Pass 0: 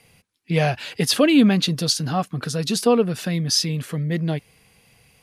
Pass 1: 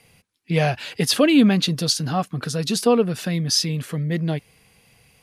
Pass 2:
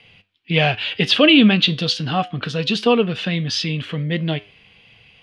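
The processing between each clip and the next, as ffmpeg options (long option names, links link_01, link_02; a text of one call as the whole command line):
ffmpeg -i in.wav -af anull out.wav
ffmpeg -i in.wav -af "flanger=delay=9.3:depth=1.1:regen=81:speed=1.4:shape=sinusoidal,lowpass=frequency=3100:width_type=q:width=4.1,volume=6dB" out.wav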